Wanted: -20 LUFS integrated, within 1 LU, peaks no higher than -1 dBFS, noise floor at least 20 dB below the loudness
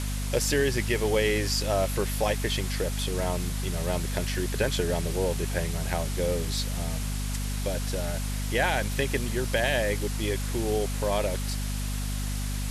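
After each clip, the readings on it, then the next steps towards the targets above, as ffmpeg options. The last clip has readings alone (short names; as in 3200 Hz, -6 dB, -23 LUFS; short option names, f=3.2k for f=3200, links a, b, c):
hum 50 Hz; harmonics up to 250 Hz; hum level -28 dBFS; noise floor -30 dBFS; noise floor target -48 dBFS; loudness -28.0 LUFS; peak -12.0 dBFS; loudness target -20.0 LUFS
-> -af "bandreject=f=50:t=h:w=4,bandreject=f=100:t=h:w=4,bandreject=f=150:t=h:w=4,bandreject=f=200:t=h:w=4,bandreject=f=250:t=h:w=4"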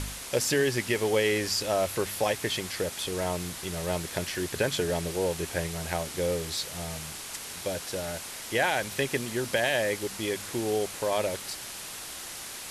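hum none; noise floor -40 dBFS; noise floor target -50 dBFS
-> -af "afftdn=nr=10:nf=-40"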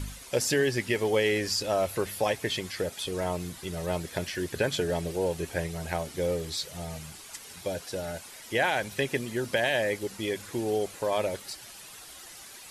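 noise floor -47 dBFS; noise floor target -50 dBFS
-> -af "afftdn=nr=6:nf=-47"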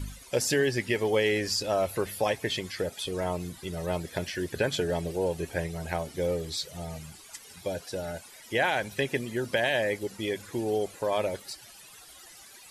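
noise floor -51 dBFS; loudness -30.0 LUFS; peak -14.0 dBFS; loudness target -20.0 LUFS
-> -af "volume=10dB"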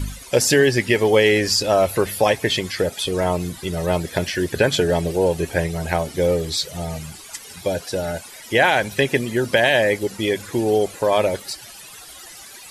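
loudness -20.0 LUFS; peak -4.0 dBFS; noise floor -41 dBFS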